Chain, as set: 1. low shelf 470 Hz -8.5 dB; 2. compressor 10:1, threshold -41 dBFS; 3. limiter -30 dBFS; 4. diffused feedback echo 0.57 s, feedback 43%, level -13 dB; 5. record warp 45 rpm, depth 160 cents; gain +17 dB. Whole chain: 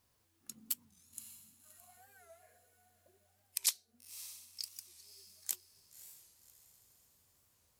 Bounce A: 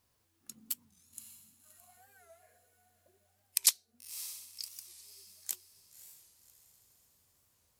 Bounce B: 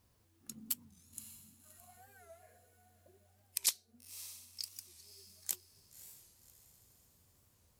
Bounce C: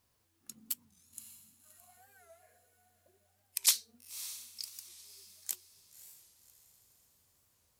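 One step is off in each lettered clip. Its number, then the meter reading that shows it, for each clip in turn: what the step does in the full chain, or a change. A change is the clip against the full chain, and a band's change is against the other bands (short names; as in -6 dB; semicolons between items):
3, crest factor change +3.5 dB; 1, 500 Hz band +3.0 dB; 2, crest factor change -3.5 dB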